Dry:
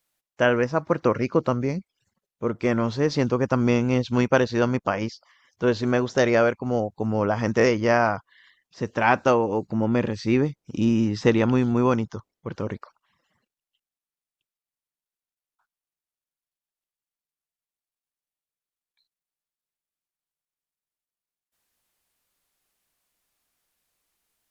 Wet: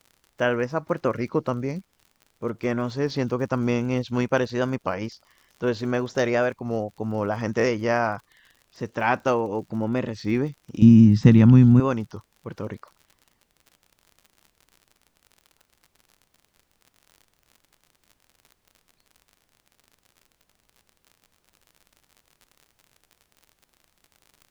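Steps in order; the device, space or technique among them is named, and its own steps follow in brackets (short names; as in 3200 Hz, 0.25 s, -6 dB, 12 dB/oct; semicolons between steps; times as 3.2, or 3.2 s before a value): warped LP (record warp 33 1/3 rpm, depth 100 cents; crackle 56/s -36 dBFS; pink noise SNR 42 dB); 10.82–11.8 resonant low shelf 280 Hz +13 dB, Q 1.5; gain -3 dB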